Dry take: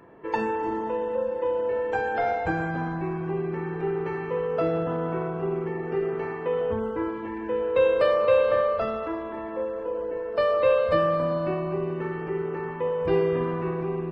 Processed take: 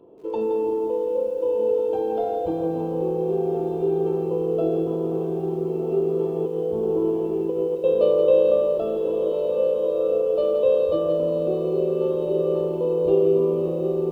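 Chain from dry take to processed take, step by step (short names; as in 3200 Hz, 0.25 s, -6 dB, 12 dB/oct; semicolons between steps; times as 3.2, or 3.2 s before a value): bell 3200 Hz -9 dB 0.29 oct; diffused feedback echo 1.418 s, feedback 50%, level -6 dB; 6.35–7.84 negative-ratio compressor -27 dBFS, ratio -0.5; EQ curve 150 Hz 0 dB, 430 Hz +12 dB, 1300 Hz -8 dB, 1900 Hz -30 dB, 3200 Hz +12 dB, 4700 Hz -7 dB; lo-fi delay 0.17 s, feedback 35%, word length 8-bit, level -7.5 dB; gain -6.5 dB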